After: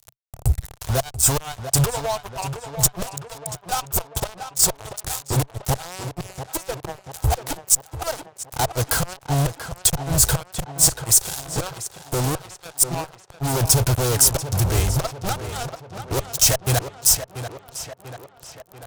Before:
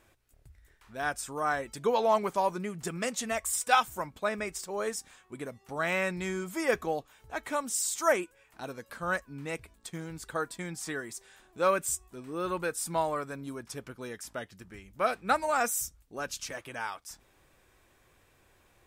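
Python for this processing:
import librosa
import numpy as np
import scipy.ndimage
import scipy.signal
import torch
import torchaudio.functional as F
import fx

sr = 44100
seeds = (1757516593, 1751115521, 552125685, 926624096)

p1 = fx.tilt_shelf(x, sr, db=3.5, hz=1300.0)
p2 = fx.gate_flip(p1, sr, shuts_db=-26.0, range_db=-30)
p3 = fx.notch_comb(p2, sr, f0_hz=580.0)
p4 = fx.fuzz(p3, sr, gain_db=54.0, gate_db=-56.0)
p5 = fx.curve_eq(p4, sr, hz=(130.0, 210.0, 670.0, 2000.0, 6400.0, 14000.0), db=(0, -21, -6, -14, 0, 4))
p6 = p5 + fx.echo_tape(p5, sr, ms=689, feedback_pct=63, wet_db=-8.5, lp_hz=3700.0, drive_db=10.0, wow_cents=39, dry=0)
y = p6 * librosa.db_to_amplitude(3.0)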